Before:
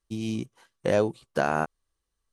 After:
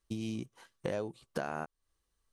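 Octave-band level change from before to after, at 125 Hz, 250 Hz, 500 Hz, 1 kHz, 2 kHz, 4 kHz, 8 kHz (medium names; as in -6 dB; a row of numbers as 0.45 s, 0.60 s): -8.5 dB, -8.5 dB, -12.0 dB, -12.5 dB, -12.0 dB, -8.0 dB, -8.5 dB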